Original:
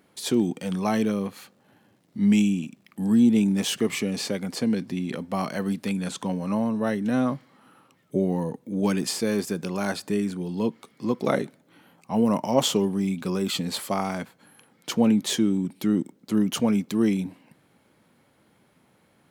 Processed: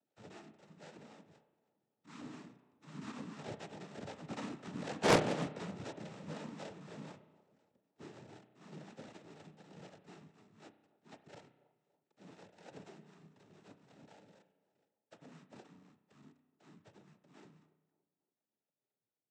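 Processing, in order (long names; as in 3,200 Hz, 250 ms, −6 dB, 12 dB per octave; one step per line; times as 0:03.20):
pitch shifter gated in a rhythm −2.5 semitones, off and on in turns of 531 ms
source passing by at 0:05.11, 19 m/s, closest 1 metre
bass and treble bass −7 dB, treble +13 dB
notch filter 4,800 Hz, Q 5.5
in parallel at 0 dB: downward compressor, threshold −59 dBFS, peak gain reduction 31 dB
on the sum: sample-rate reduction 1,200 Hz, jitter 0%
two-band tremolo in antiphase 4 Hz, depth 50%, crossover 420 Hz
cochlear-implant simulation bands 12
on a send: delay with a band-pass on its return 284 ms, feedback 42%, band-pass 510 Hz, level −18 dB
on the sum: spring reverb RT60 1 s, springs 32 ms, chirp 70 ms, DRR 11 dB
highs frequency-modulated by the lows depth 0.78 ms
level +8 dB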